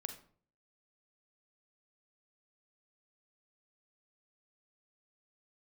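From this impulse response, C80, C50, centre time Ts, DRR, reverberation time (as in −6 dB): 14.0 dB, 9.5 dB, 13 ms, 6.5 dB, 0.50 s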